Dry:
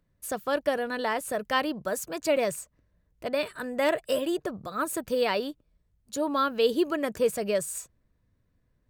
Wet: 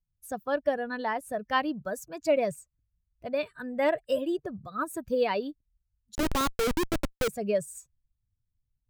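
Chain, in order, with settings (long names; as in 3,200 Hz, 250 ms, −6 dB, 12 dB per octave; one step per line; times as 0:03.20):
spectral dynamics exaggerated over time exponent 1.5
high-shelf EQ 3,000 Hz −9.5 dB
0:06.15–0:07.28: comparator with hysteresis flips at −28.5 dBFS
level +2.5 dB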